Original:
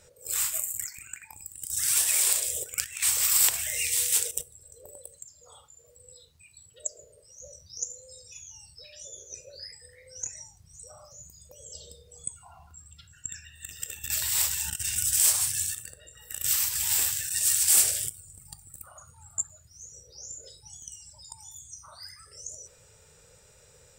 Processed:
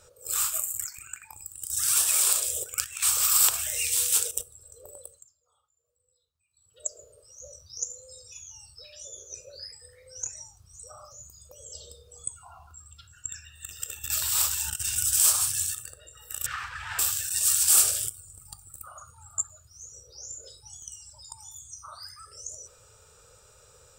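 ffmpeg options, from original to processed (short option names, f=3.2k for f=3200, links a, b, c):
-filter_complex "[0:a]asettb=1/sr,asplit=3[a][b][c];[a]atrim=end=16.464[d];[b]atrim=start=16.46:end=16.99,asetpts=PTS-STARTPTS,afade=t=in:d=0.004:c=qsin,afade=t=out:st=0.526:d=0.004:c=qsin,lowpass=f=1.8k:t=q:w=3.3[e];[c]atrim=start=16.986[f];[d][e]acrossfade=d=0.004:c1=hsin:c2=qsin[g];[g][f]acrossfade=d=0.004:c1=qsin:c2=hsin,asplit=3[h][i][j];[h]atrim=end=5.46,asetpts=PTS-STARTPTS,afade=t=out:st=5.04:d=0.42:c=qua:silence=0.0749894[k];[i]atrim=start=5.46:end=6.45,asetpts=PTS-STARTPTS,volume=-22.5dB[l];[j]atrim=start=6.45,asetpts=PTS-STARTPTS,afade=t=in:d=0.42:c=qua:silence=0.0749894[m];[k][l][m]concat=n=3:v=0:a=1,equalizer=f=160:t=o:w=0.33:g=-9,equalizer=f=250:t=o:w=0.33:g=-8,equalizer=f=1.25k:t=o:w=0.33:g=10,equalizer=f=2k:t=o:w=0.33:g=-10,volume=1dB"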